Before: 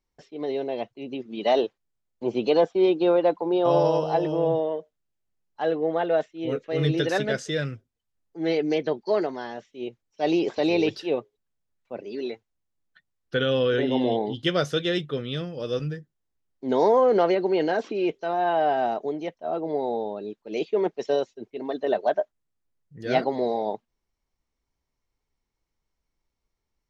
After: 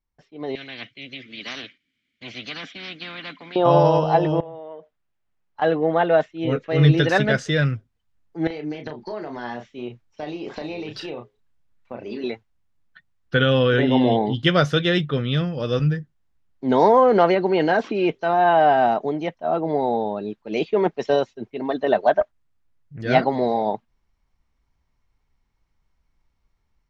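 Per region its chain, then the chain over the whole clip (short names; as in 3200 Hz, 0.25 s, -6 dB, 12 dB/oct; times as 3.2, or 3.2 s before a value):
0.55–3.56 vowel filter i + tilt shelf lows -6.5 dB, about 940 Hz + spectral compressor 4:1
4.4–5.62 tone controls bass -8 dB, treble -6 dB + compressor 16:1, threshold -37 dBFS
8.47–12.24 compressor 16:1, threshold -33 dBFS + doubler 33 ms -6 dB
22.21–23.02 bell 180 Hz -5.5 dB 0.36 oct + Doppler distortion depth 0.4 ms
whole clip: LPF 1600 Hz 6 dB/oct; bell 420 Hz -9.5 dB 1.7 oct; AGC gain up to 13 dB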